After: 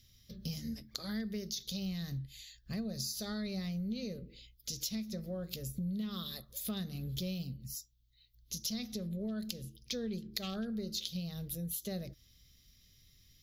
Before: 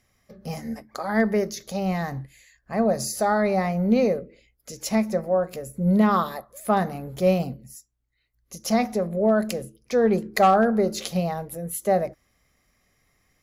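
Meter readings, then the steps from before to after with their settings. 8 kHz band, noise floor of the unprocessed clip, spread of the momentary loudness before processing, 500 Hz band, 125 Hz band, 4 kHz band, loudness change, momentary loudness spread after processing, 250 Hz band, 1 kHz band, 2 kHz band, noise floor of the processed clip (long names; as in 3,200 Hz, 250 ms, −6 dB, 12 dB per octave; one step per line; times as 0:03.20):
−7.5 dB, −70 dBFS, 14 LU, −23.5 dB, −10.5 dB, −2.0 dB, −15.5 dB, 7 LU, −14.0 dB, −31.0 dB, −20.0 dB, −66 dBFS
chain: drawn EQ curve 110 Hz 0 dB, 500 Hz −17 dB, 840 Hz −30 dB, 1,300 Hz −19 dB, 2,200 Hz −13 dB, 3,500 Hz +7 dB, 6,000 Hz 0 dB, 8,900 Hz −13 dB, 14,000 Hz +3 dB
downward compressor 6 to 1, threshold −42 dBFS, peak gain reduction 18 dB
level +5.5 dB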